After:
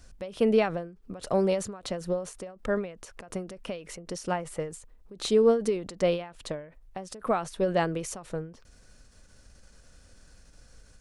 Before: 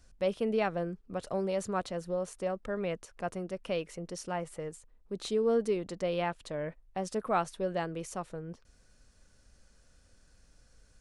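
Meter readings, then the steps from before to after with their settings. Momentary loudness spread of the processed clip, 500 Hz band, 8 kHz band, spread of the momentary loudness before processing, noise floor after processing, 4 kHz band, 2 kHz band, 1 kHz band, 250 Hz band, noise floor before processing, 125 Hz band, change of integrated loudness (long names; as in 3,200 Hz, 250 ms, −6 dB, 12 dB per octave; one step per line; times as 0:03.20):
18 LU, +5.0 dB, +6.0 dB, 11 LU, −56 dBFS, +5.5 dB, +3.0 dB, +1.5 dB, +5.0 dB, −63 dBFS, +3.5 dB, +5.0 dB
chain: every ending faded ahead of time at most 120 dB per second
level +8 dB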